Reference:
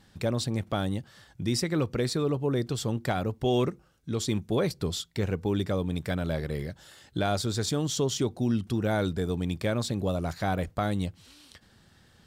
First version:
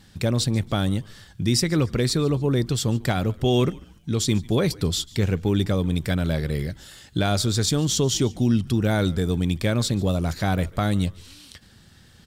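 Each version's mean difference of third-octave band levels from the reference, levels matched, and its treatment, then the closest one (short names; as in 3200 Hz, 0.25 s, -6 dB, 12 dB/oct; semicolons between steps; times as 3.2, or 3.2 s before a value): 2.5 dB: bell 730 Hz -6.5 dB 2.6 oct; frequency-shifting echo 0.144 s, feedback 36%, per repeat -95 Hz, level -22 dB; gain +8.5 dB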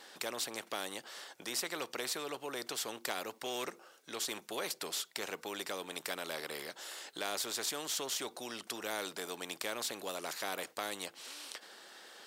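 14.5 dB: HPF 390 Hz 24 dB/oct; spectral compressor 2:1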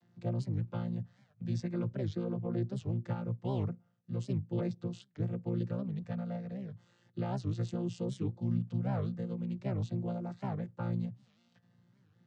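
9.5 dB: chord vocoder bare fifth, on A#2; record warp 78 rpm, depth 250 cents; gain -5.5 dB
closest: first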